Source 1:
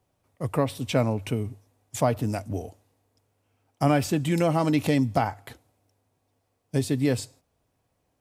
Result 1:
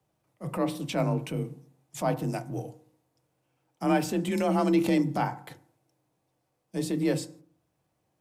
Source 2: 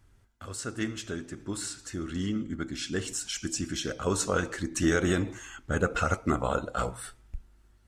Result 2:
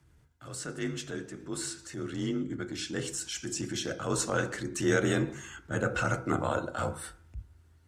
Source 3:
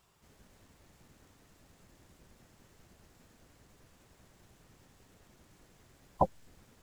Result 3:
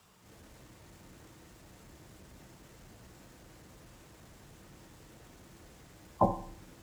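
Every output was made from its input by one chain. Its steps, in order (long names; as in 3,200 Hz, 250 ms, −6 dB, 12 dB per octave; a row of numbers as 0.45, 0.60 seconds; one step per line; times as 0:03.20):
feedback delay network reverb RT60 0.53 s, low-frequency decay 1.2×, high-frequency decay 0.35×, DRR 10 dB
frequency shifter +32 Hz
transient designer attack −7 dB, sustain −1 dB
normalise the peak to −12 dBFS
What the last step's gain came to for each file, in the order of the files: −2.5, −0.5, +7.0 decibels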